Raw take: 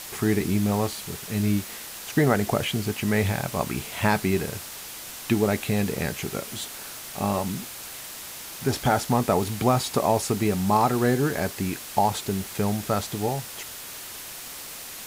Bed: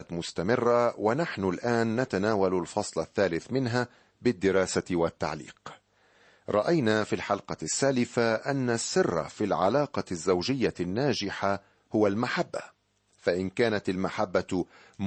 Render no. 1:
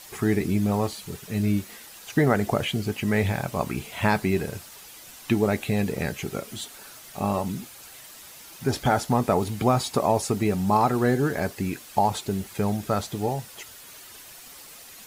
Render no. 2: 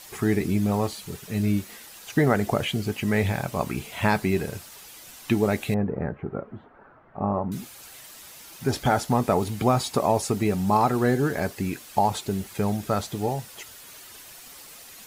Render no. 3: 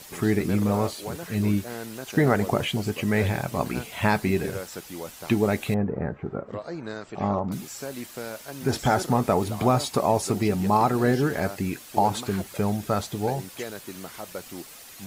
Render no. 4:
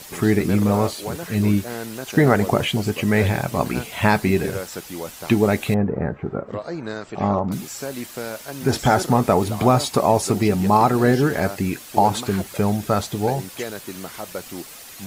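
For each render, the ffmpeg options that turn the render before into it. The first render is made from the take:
-af "afftdn=nr=9:nf=-39"
-filter_complex "[0:a]asettb=1/sr,asplit=3[a][b][c];[a]atrim=end=5.744[d];[b]atrim=start=5.74:end=7.52,asetpts=PTS-STARTPTS,afade=t=in:d=0.004:c=qsin,afade=t=out:st=1.776:d=0.004:c=qsin,lowpass=f=1.4k:w=0.5412,lowpass=f=1.4k:w=1.3066[e];[c]atrim=start=7.516[f];[d][e]acrossfade=d=0.004:c1=hsin:c2=qsin[g];[g][f]acrossfade=d=0.004:c1=qsin:c2=hsin"
-filter_complex "[1:a]volume=-10.5dB[a];[0:a][a]amix=inputs=2:normalize=0"
-af "volume=5dB"

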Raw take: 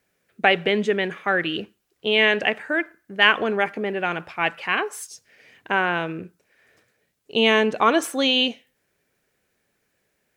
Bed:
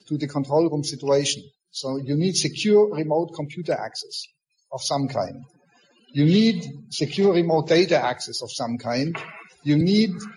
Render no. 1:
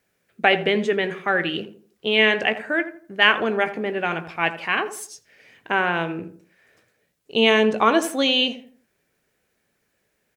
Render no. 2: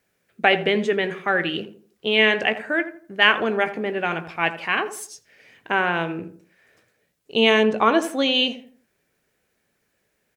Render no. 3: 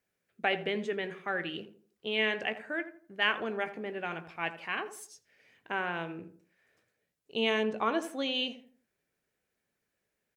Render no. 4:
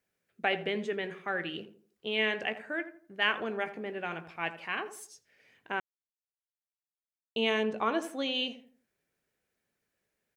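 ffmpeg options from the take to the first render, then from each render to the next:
-filter_complex "[0:a]asplit=2[a][b];[b]adelay=18,volume=-12.5dB[c];[a][c]amix=inputs=2:normalize=0,asplit=2[d][e];[e]adelay=83,lowpass=f=1.1k:p=1,volume=-10.5dB,asplit=2[f][g];[g]adelay=83,lowpass=f=1.1k:p=1,volume=0.37,asplit=2[h][i];[i]adelay=83,lowpass=f=1.1k:p=1,volume=0.37,asplit=2[j][k];[k]adelay=83,lowpass=f=1.1k:p=1,volume=0.37[l];[d][f][h][j][l]amix=inputs=5:normalize=0"
-filter_complex "[0:a]asettb=1/sr,asplit=3[a][b][c];[a]atrim=end=7.634[d];[b]atrim=start=7.63:end=8.35,asetpts=PTS-STARTPTS,afade=t=in:d=0.004:c=qsin,afade=t=out:st=0.716:d=0.004:c=qsin,highshelf=f=4.6k:g=-6.5[e];[c]atrim=start=8.346[f];[d][e]acrossfade=d=0.004:c1=hsin:c2=qsin[g];[g][f]acrossfade=d=0.004:c1=qsin:c2=hsin"
-af "volume=-12dB"
-filter_complex "[0:a]asplit=3[a][b][c];[a]atrim=end=5.8,asetpts=PTS-STARTPTS,afade=t=out:st=5.796:d=0.004:c=hsin[d];[b]atrim=start=5.8:end=7.36,asetpts=PTS-STARTPTS,volume=0[e];[c]atrim=start=7.36,asetpts=PTS-STARTPTS,afade=t=in:d=0.004:c=hsin[f];[d][e][f]concat=n=3:v=0:a=1"

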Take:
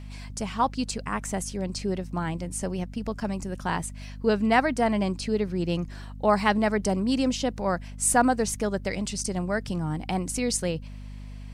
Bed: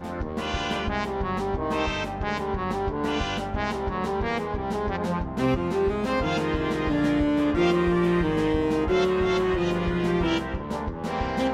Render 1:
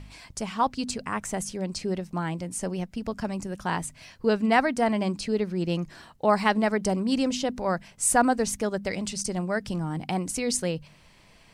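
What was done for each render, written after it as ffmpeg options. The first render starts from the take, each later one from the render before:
-af "bandreject=f=50:t=h:w=4,bandreject=f=100:t=h:w=4,bandreject=f=150:t=h:w=4,bandreject=f=200:t=h:w=4,bandreject=f=250:t=h:w=4"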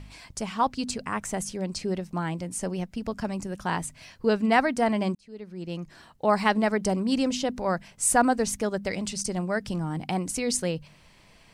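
-filter_complex "[0:a]asplit=2[a][b];[a]atrim=end=5.15,asetpts=PTS-STARTPTS,afade=t=out:st=5.146:d=0.004:c=hsin[c];[b]atrim=start=5.15,asetpts=PTS-STARTPTS,afade=t=in:d=1.27[d];[c][d]concat=n=2:v=0:a=1"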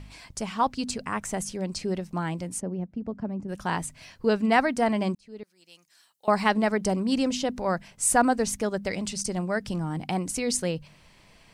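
-filter_complex "[0:a]asplit=3[a][b][c];[a]afade=t=out:st=2.59:d=0.02[d];[b]bandpass=f=220:t=q:w=0.61,afade=t=in:st=2.59:d=0.02,afade=t=out:st=3.48:d=0.02[e];[c]afade=t=in:st=3.48:d=0.02[f];[d][e][f]amix=inputs=3:normalize=0,asettb=1/sr,asplit=3[g][h][i];[g]atrim=end=5.434[j];[h]atrim=start=5.43:end=6.28,asetpts=PTS-STARTPTS,afade=t=in:d=0.004:c=qsin,afade=t=out:st=0.846:d=0.004:c=qsin,aderivative[k];[i]atrim=start=6.276[l];[j][k]acrossfade=d=0.004:c1=hsin:c2=qsin[m];[m][l]acrossfade=d=0.004:c1=qsin:c2=hsin"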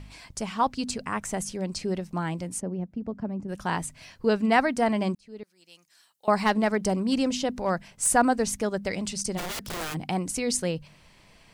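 -filter_complex "[0:a]asplit=3[a][b][c];[a]afade=t=out:st=6.4:d=0.02[d];[b]aeval=exprs='clip(val(0),-1,0.112)':c=same,afade=t=in:st=6.4:d=0.02,afade=t=out:st=8.06:d=0.02[e];[c]afade=t=in:st=8.06:d=0.02[f];[d][e][f]amix=inputs=3:normalize=0,asplit=3[g][h][i];[g]afade=t=out:st=9.37:d=0.02[j];[h]aeval=exprs='(mod(26.6*val(0)+1,2)-1)/26.6':c=same,afade=t=in:st=9.37:d=0.02,afade=t=out:st=9.93:d=0.02[k];[i]afade=t=in:st=9.93:d=0.02[l];[j][k][l]amix=inputs=3:normalize=0"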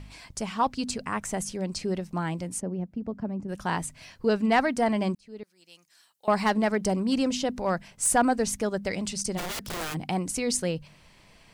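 -af "asoftclip=type=tanh:threshold=-11dB"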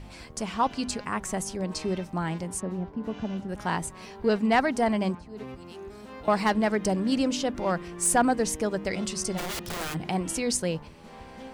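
-filter_complex "[1:a]volume=-18dB[a];[0:a][a]amix=inputs=2:normalize=0"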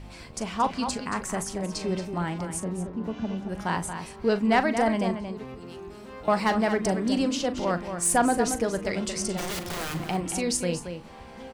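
-filter_complex "[0:a]asplit=2[a][b];[b]adelay=40,volume=-12.5dB[c];[a][c]amix=inputs=2:normalize=0,asplit=2[d][e];[e]adelay=227.4,volume=-8dB,highshelf=f=4k:g=-5.12[f];[d][f]amix=inputs=2:normalize=0"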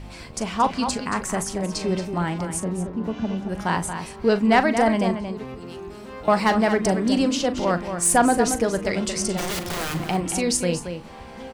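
-af "volume=4.5dB"

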